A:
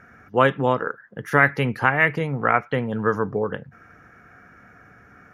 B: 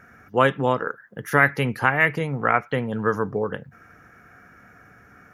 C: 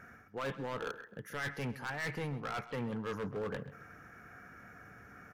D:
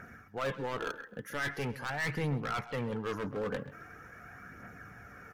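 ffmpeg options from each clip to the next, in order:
-af "highshelf=f=7.6k:g=11,volume=-1dB"
-filter_complex "[0:a]areverse,acompressor=threshold=-28dB:ratio=5,areverse,asoftclip=type=hard:threshold=-30dB,asplit=2[a][b];[b]adelay=132,lowpass=f=4.7k:p=1,volume=-15dB,asplit=2[c][d];[d]adelay=132,lowpass=f=4.7k:p=1,volume=0.28,asplit=2[e][f];[f]adelay=132,lowpass=f=4.7k:p=1,volume=0.28[g];[a][c][e][g]amix=inputs=4:normalize=0,volume=-3.5dB"
-af "aphaser=in_gain=1:out_gain=1:delay=4.1:decay=0.36:speed=0.43:type=triangular,volume=3dB"

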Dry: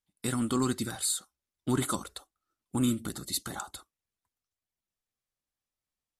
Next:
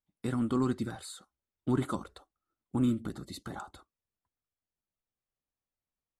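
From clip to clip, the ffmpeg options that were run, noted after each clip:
-af "lowpass=f=1.1k:p=1"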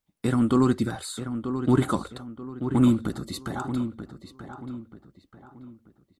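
-filter_complex "[0:a]asplit=2[a][b];[b]adelay=934,lowpass=f=2.7k:p=1,volume=-9dB,asplit=2[c][d];[d]adelay=934,lowpass=f=2.7k:p=1,volume=0.37,asplit=2[e][f];[f]adelay=934,lowpass=f=2.7k:p=1,volume=0.37,asplit=2[g][h];[h]adelay=934,lowpass=f=2.7k:p=1,volume=0.37[i];[a][c][e][g][i]amix=inputs=5:normalize=0,volume=8.5dB"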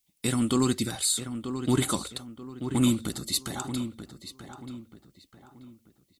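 -af "aexciter=amount=4.1:drive=5.2:freq=2.1k,volume=-4dB"

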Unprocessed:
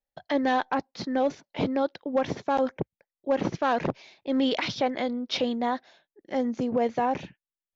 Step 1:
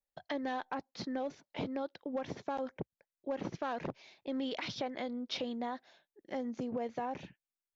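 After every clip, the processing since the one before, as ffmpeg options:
-af "acompressor=threshold=-31dB:ratio=2.5,volume=-5.5dB"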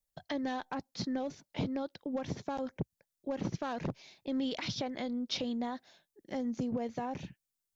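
-af "bass=f=250:g=10,treble=f=4k:g=9,volume=-1dB"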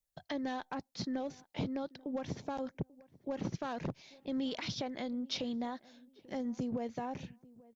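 -filter_complex "[0:a]asplit=2[a][b];[b]adelay=838,lowpass=f=1.2k:p=1,volume=-22dB,asplit=2[c][d];[d]adelay=838,lowpass=f=1.2k:p=1,volume=0.31[e];[a][c][e]amix=inputs=3:normalize=0,volume=-2dB"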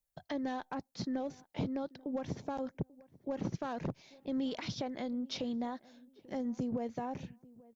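-af "equalizer=f=3.5k:w=0.54:g=-4.5,volume=1dB"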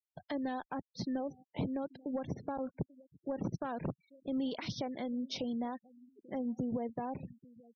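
-af "afftfilt=real='re*gte(hypot(re,im),0.00447)':imag='im*gte(hypot(re,im),0.00447)':win_size=1024:overlap=0.75"

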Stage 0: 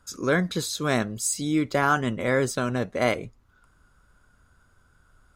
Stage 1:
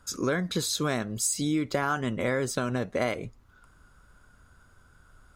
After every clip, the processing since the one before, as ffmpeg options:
-af "acompressor=threshold=-27dB:ratio=5,volume=3dB"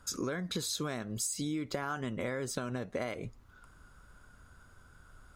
-af "acompressor=threshold=-33dB:ratio=4"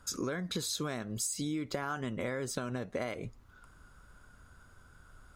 -af anull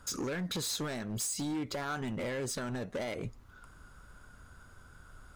-af "volume=34.5dB,asoftclip=hard,volume=-34.5dB,volume=3dB"

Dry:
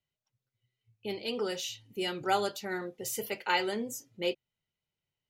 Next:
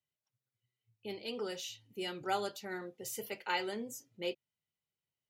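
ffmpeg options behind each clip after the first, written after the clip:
-af "highpass=74,volume=-6dB"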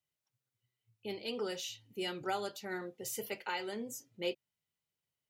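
-af "alimiter=level_in=1.5dB:limit=-24dB:level=0:latency=1:release=389,volume=-1.5dB,volume=1.5dB"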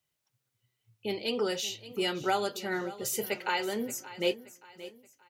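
-af "aecho=1:1:576|1152|1728:0.158|0.0618|0.0241,volume=7.5dB"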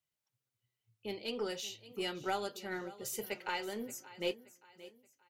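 -af "aeval=exprs='0.158*(cos(1*acos(clip(val(0)/0.158,-1,1)))-cos(1*PI/2))+0.01*(cos(2*acos(clip(val(0)/0.158,-1,1)))-cos(2*PI/2))+0.00355*(cos(7*acos(clip(val(0)/0.158,-1,1)))-cos(7*PI/2))':c=same,volume=-7dB"

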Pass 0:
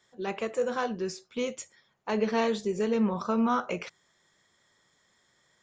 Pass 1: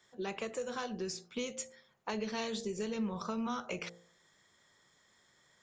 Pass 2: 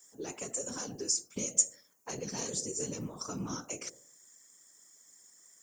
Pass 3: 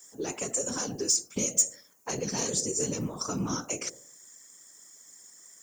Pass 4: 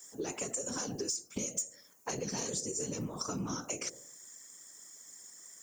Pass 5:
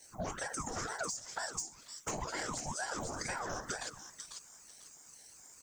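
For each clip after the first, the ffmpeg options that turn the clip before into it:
-filter_complex "[0:a]bandreject=f=57.96:t=h:w=4,bandreject=f=115.92:t=h:w=4,bandreject=f=173.88:t=h:w=4,bandreject=f=231.84:t=h:w=4,bandreject=f=289.8:t=h:w=4,bandreject=f=347.76:t=h:w=4,bandreject=f=405.72:t=h:w=4,bandreject=f=463.68:t=h:w=4,bandreject=f=521.64:t=h:w=4,bandreject=f=579.6:t=h:w=4,bandreject=f=637.56:t=h:w=4,bandreject=f=695.52:t=h:w=4,bandreject=f=753.48:t=h:w=4,bandreject=f=811.44:t=h:w=4,bandreject=f=869.4:t=h:w=4,acrossover=split=130|3000[a][b][c];[b]acompressor=threshold=-36dB:ratio=6[d];[a][d][c]amix=inputs=3:normalize=0"
-af "lowshelf=f=170:t=q:w=3:g=-13.5,aexciter=amount=13.9:drive=6.8:freq=5.7k,afftfilt=real='hypot(re,im)*cos(2*PI*random(0))':imag='hypot(re,im)*sin(2*PI*random(1))':win_size=512:overlap=0.75"
-af "asoftclip=type=tanh:threshold=-22dB,volume=7dB"
-af "acompressor=threshold=-34dB:ratio=5"
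-filter_complex "[0:a]acrossover=split=500|1000[a][b][c];[b]aeval=exprs='0.0266*sin(PI/2*3.16*val(0)/0.0266)':c=same[d];[c]aecho=1:1:496|992|1488:0.631|0.151|0.0363[e];[a][d][e]amix=inputs=3:normalize=0,aeval=exprs='val(0)*sin(2*PI*730*n/s+730*0.7/2.1*sin(2*PI*2.1*n/s))':c=same,volume=-2.5dB"

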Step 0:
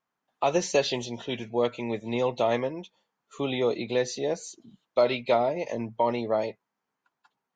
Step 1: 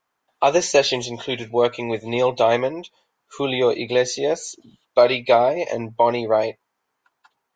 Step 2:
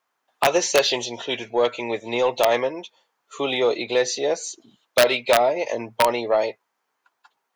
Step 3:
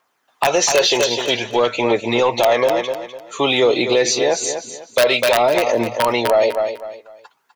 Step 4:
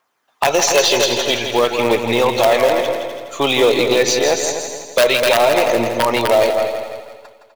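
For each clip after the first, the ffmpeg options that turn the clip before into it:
-af "equalizer=f=190:t=o:w=0.99:g=-9.5,volume=8.5dB"
-af "aeval=exprs='(mod(1.78*val(0)+1,2)-1)/1.78':c=same,highpass=f=360:p=1,acontrast=74,volume=-6dB"
-filter_complex "[0:a]aphaser=in_gain=1:out_gain=1:delay=2.4:decay=0.34:speed=0.52:type=triangular,asplit=2[a][b];[b]aecho=0:1:251|502|753:0.282|0.0789|0.0221[c];[a][c]amix=inputs=2:normalize=0,alimiter=level_in=14.5dB:limit=-1dB:release=50:level=0:latency=1,volume=-6dB"
-filter_complex "[0:a]asplit=2[a][b];[b]acrusher=bits=3:dc=4:mix=0:aa=0.000001,volume=-9.5dB[c];[a][c]amix=inputs=2:normalize=0,aecho=1:1:165|330|495|660|825|990:0.422|0.202|0.0972|0.0466|0.0224|0.0107,volume=-1.5dB"

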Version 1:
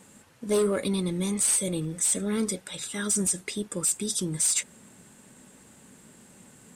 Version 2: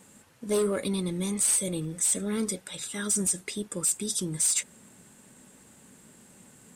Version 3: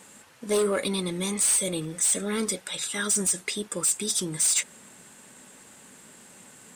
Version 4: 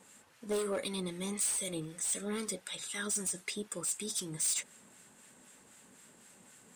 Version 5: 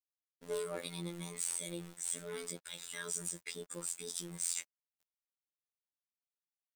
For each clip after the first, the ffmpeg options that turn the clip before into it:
-af "highshelf=f=10k:g=4,volume=-2dB"
-filter_complex "[0:a]asplit=2[a][b];[b]highpass=f=720:p=1,volume=10dB,asoftclip=type=tanh:threshold=-15.5dB[c];[a][c]amix=inputs=2:normalize=0,lowpass=f=7.3k:p=1,volume=-6dB,volume=2dB"
-filter_complex "[0:a]acrossover=split=1100[a][b];[a]aeval=exprs='val(0)*(1-0.5/2+0.5/2*cos(2*PI*3.9*n/s))':c=same[c];[b]aeval=exprs='val(0)*(1-0.5/2-0.5/2*cos(2*PI*3.9*n/s))':c=same[d];[c][d]amix=inputs=2:normalize=0,asoftclip=type=hard:threshold=-22dB,volume=-6.5dB"
-af "aeval=exprs='val(0)*gte(abs(val(0)),0.00501)':c=same,afftfilt=real='hypot(re,im)*cos(PI*b)':imag='0':win_size=2048:overlap=0.75,volume=-1.5dB"

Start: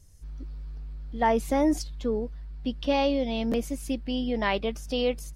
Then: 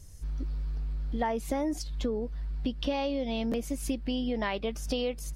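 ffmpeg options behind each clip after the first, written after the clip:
-af "acompressor=threshold=-34dB:ratio=6,volume=6dB"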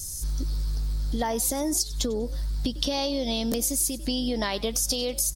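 -filter_complex "[0:a]aexciter=amount=4.4:drive=8.5:freq=3.8k,asplit=3[a][b][c];[b]adelay=96,afreqshift=54,volume=-21.5dB[d];[c]adelay=192,afreqshift=108,volume=-31.4dB[e];[a][d][e]amix=inputs=3:normalize=0,acompressor=threshold=-29dB:ratio=6,volume=6dB"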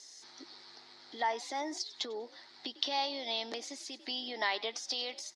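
-af "highpass=f=370:w=0.5412,highpass=f=370:w=1.3066,equalizer=f=510:t=q:w=4:g=-10,equalizer=f=840:t=q:w=4:g=6,equalizer=f=2k:t=q:w=4:g=9,equalizer=f=3.9k:t=q:w=4:g=3,lowpass=f=4.9k:w=0.5412,lowpass=f=4.9k:w=1.3066,volume=-5.5dB"

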